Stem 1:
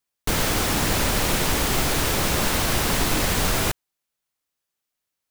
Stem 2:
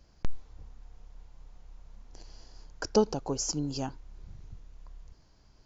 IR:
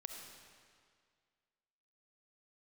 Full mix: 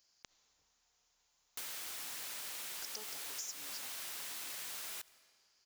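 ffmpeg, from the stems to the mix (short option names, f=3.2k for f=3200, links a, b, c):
-filter_complex "[0:a]highshelf=f=4.8k:g=-11,adelay=1300,volume=-5dB,asplit=2[a][b];[b]volume=-14.5dB[c];[1:a]volume=0.5dB,asplit=2[d][e];[e]volume=-11dB[f];[2:a]atrim=start_sample=2205[g];[c][f]amix=inputs=2:normalize=0[h];[h][g]afir=irnorm=-1:irlink=0[i];[a][d][i]amix=inputs=3:normalize=0,aderivative,acompressor=threshold=-41dB:ratio=6"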